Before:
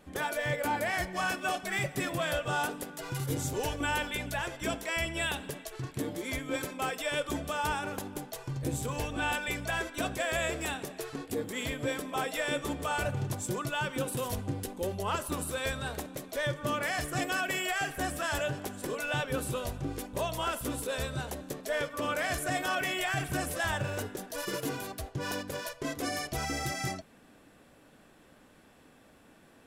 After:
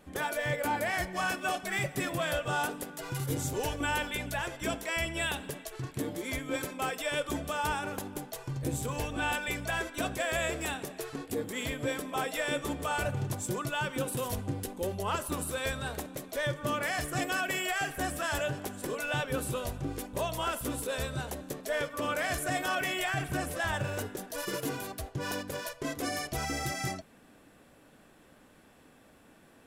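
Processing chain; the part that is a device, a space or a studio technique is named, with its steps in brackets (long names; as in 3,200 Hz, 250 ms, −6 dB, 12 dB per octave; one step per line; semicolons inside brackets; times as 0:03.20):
0:23.10–0:23.74: high-shelf EQ 5,000 Hz −5.5 dB
exciter from parts (in parallel at −12 dB: high-pass filter 4,700 Hz 6 dB per octave + soft clipping −38 dBFS, distortion −12 dB + high-pass filter 4,800 Hz)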